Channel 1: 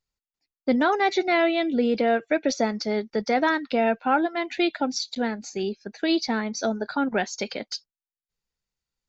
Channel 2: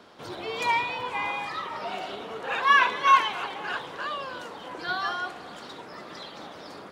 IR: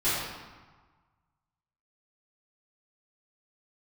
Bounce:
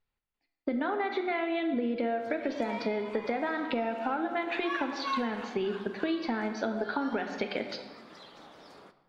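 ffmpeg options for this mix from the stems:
-filter_complex "[0:a]bass=f=250:g=-2,treble=f=4k:g=-15,acompressor=threshold=-28dB:ratio=6,highshelf=f=4.7k:t=q:w=1.5:g=-8,volume=2.5dB,asplit=3[a][b][c];[b]volume=-17dB[d];[1:a]adelay=2000,volume=-10.5dB,asplit=2[e][f];[f]volume=-22.5dB[g];[c]apad=whole_len=393090[h];[e][h]sidechaincompress=threshold=-30dB:ratio=3:attack=37:release=1150[i];[2:a]atrim=start_sample=2205[j];[d][g]amix=inputs=2:normalize=0[k];[k][j]afir=irnorm=-1:irlink=0[l];[a][i][l]amix=inputs=3:normalize=0,acompressor=threshold=-28dB:ratio=3"

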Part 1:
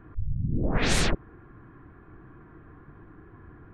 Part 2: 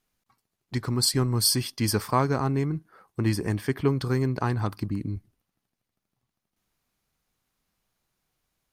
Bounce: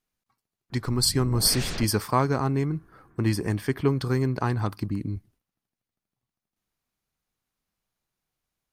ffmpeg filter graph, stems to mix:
-filter_complex "[0:a]adelay=700,volume=-9dB[a];[1:a]agate=range=-7dB:threshold=-58dB:ratio=16:detection=peak,volume=0.5dB[b];[a][b]amix=inputs=2:normalize=0"

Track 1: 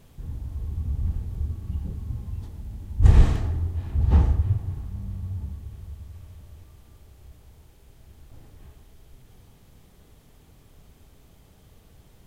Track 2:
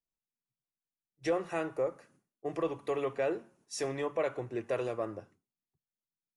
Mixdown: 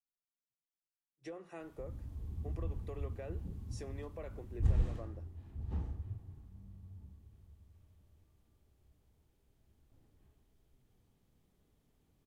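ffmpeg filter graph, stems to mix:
-filter_complex "[0:a]adelay=1600,volume=-12.5dB,afade=t=out:st=4.4:d=0.73:silence=0.375837[a];[1:a]volume=-14.5dB[b];[a][b]amix=inputs=2:normalize=0,equalizer=f=270:t=o:w=1.5:g=5,acrossover=split=140[c][d];[d]acompressor=threshold=-42dB:ratio=6[e];[c][e]amix=inputs=2:normalize=0"

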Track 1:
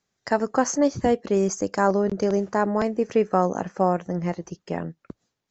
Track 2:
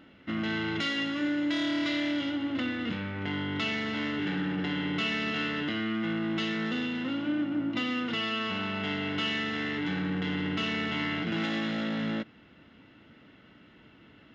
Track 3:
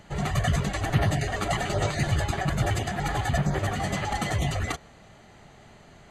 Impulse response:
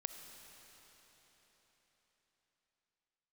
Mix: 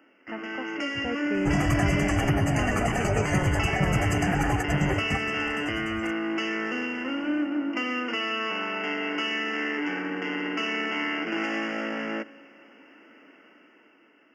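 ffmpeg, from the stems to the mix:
-filter_complex "[0:a]lowpass=f=2.5k:t=q:w=4.9,equalizer=f=80:t=o:w=2.3:g=7.5,volume=-19.5dB,asplit=2[a][b];[1:a]highpass=f=290:w=0.5412,highpass=f=290:w=1.3066,volume=-3.5dB,asplit=2[c][d];[d]volume=-10.5dB[e];[2:a]acompressor=threshold=-27dB:ratio=6,adelay=1350,volume=-1dB[f];[b]apad=whole_len=328958[g];[f][g]sidechaingate=range=-15dB:threshold=-58dB:ratio=16:detection=peak[h];[3:a]atrim=start_sample=2205[i];[e][i]afir=irnorm=-1:irlink=0[j];[a][c][h][j]amix=inputs=4:normalize=0,acrossover=split=370[k][l];[l]acompressor=threshold=-31dB:ratio=6[m];[k][m]amix=inputs=2:normalize=0,asuperstop=centerf=3800:order=8:qfactor=2,dynaudnorm=f=170:g=11:m=7dB"

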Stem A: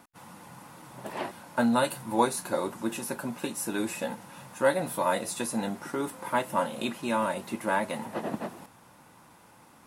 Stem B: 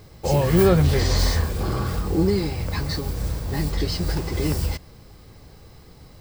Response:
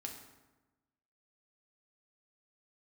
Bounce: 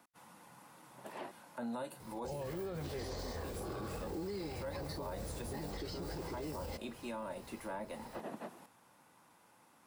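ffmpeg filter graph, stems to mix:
-filter_complex "[0:a]volume=-9dB[a];[1:a]adelay=2000,volume=-5.5dB[b];[a][b]amix=inputs=2:normalize=0,lowshelf=f=150:g=-10,acrossover=split=330|790[c][d][e];[c]acompressor=threshold=-41dB:ratio=4[f];[d]acompressor=threshold=-37dB:ratio=4[g];[e]acompressor=threshold=-48dB:ratio=4[h];[f][g][h]amix=inputs=3:normalize=0,alimiter=level_in=9.5dB:limit=-24dB:level=0:latency=1:release=26,volume=-9.5dB"

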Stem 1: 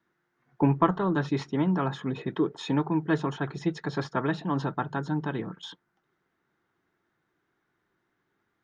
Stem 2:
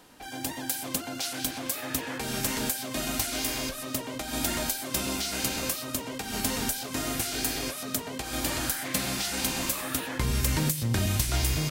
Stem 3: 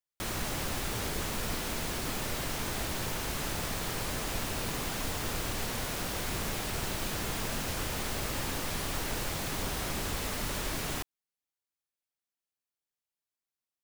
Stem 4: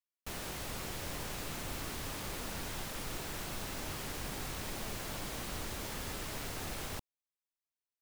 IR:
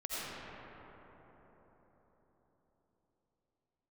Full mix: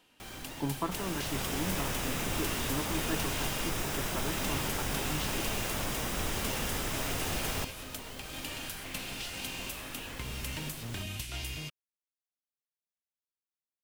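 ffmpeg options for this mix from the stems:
-filter_complex "[0:a]volume=-11.5dB[a];[1:a]equalizer=f=2.8k:w=2.1:g=11.5,volume=-13.5dB[b];[2:a]volume=-11.5dB[c];[3:a]bandreject=f=4.3k:w=7.1,dynaudnorm=f=180:g=7:m=5dB,adelay=650,volume=1.5dB[d];[a][b][c][d]amix=inputs=4:normalize=0"

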